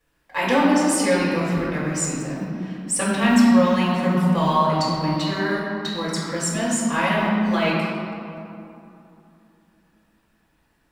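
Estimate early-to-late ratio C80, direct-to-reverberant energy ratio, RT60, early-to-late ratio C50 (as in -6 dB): 0.0 dB, -10.0 dB, 2.8 s, -1.5 dB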